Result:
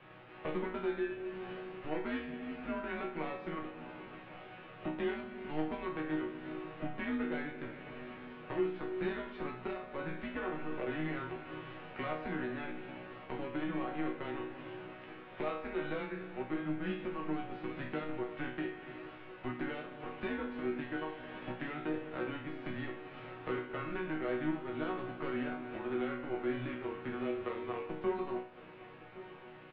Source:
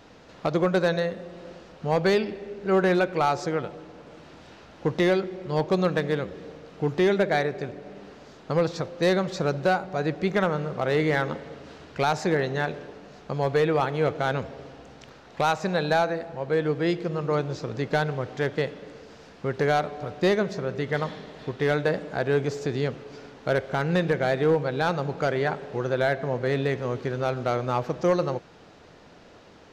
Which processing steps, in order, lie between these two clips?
spectral envelope flattened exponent 0.6
dynamic equaliser 470 Hz, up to +6 dB, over −37 dBFS, Q 2
downward compressor 4 to 1, threshold −34 dBFS, peak gain reduction 17 dB
single-sideband voice off tune −150 Hz 220–3,000 Hz
resonators tuned to a chord B2 major, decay 0.48 s
single-tap delay 1,113 ms −17 dB
level +14.5 dB

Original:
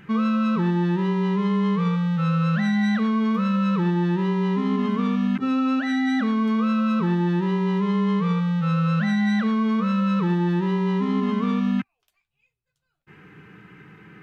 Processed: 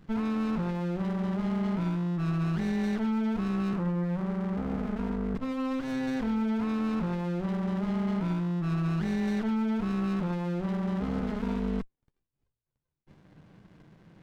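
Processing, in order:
0:03.73–0:05.35: Chebyshev band-pass filter 130–1,600 Hz, order 3
windowed peak hold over 65 samples
level −6 dB

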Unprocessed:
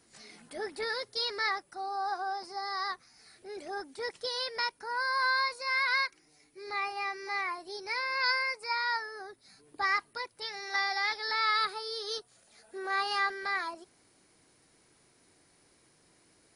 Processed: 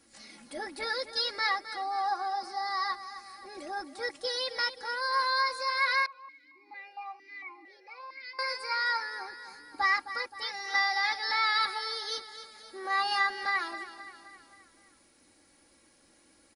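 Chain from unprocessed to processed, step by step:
comb filter 3.6 ms, depth 70%
repeating echo 262 ms, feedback 52%, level −12.5 dB
0:06.06–0:08.39: formant filter that steps through the vowels 4.4 Hz

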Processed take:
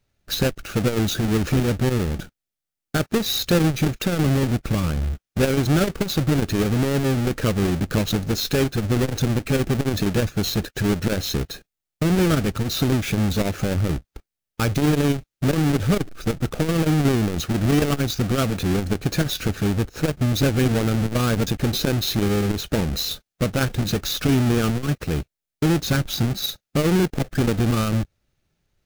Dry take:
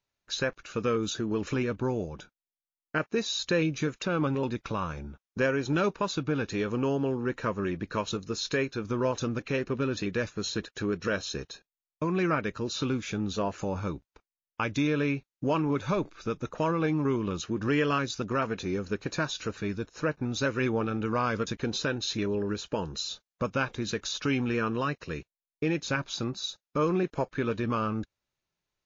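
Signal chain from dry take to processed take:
each half-wave held at its own peak
low-shelf EQ 210 Hz +10.5 dB
in parallel at +0.5 dB: brickwall limiter −24.5 dBFS, peak gain reduction 16.5 dB
on the sum: parametric band 1,000 Hz −9.5 dB 0.22 octaves
saturating transformer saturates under 200 Hz

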